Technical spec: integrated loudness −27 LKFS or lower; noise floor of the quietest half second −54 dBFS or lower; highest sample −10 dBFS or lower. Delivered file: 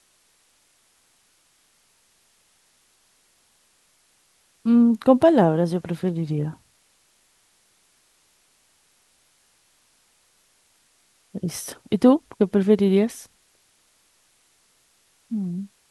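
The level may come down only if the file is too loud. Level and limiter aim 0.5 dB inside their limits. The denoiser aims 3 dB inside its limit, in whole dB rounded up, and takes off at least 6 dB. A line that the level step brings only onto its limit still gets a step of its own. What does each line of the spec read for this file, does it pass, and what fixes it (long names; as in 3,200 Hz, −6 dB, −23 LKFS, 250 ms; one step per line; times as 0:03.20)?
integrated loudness −21.0 LKFS: out of spec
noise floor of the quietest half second −63 dBFS: in spec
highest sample −4.0 dBFS: out of spec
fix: level −6.5 dB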